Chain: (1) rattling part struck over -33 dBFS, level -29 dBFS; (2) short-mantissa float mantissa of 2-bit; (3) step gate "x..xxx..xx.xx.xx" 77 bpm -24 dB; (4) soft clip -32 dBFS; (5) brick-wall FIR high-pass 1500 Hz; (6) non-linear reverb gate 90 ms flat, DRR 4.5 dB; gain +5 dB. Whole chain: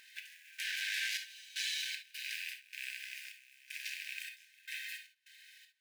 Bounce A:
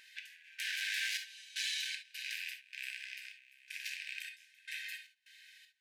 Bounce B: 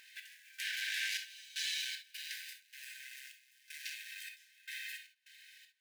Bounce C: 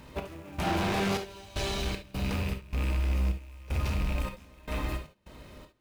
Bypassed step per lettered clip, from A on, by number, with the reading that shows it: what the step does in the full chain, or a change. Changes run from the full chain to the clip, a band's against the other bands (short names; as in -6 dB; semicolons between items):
2, distortion -20 dB; 1, loudness change -1.0 LU; 5, crest factor change -7.5 dB